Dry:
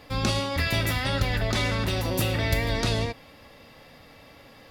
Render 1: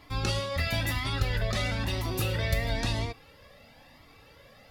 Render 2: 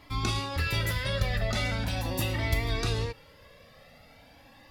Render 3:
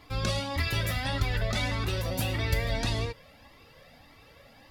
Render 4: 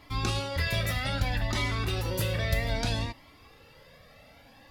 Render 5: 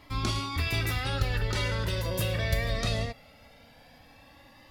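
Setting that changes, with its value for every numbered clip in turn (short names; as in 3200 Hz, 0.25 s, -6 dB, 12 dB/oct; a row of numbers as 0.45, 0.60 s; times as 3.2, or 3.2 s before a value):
cascading flanger, rate: 1, 0.41, 1.7, 0.62, 0.2 Hz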